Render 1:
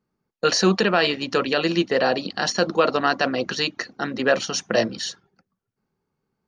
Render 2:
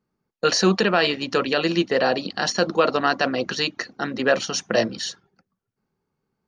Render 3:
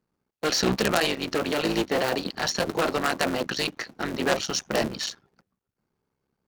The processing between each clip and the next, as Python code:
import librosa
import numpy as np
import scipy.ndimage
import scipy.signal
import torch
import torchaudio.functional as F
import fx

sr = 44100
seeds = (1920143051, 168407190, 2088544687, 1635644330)

y1 = x
y2 = fx.cycle_switch(y1, sr, every=3, mode='muted')
y2 = fx.cheby_harmonics(y2, sr, harmonics=(3, 5), levels_db=(-8, -13), full_scale_db=-5.5)
y2 = y2 * librosa.db_to_amplitude(1.0)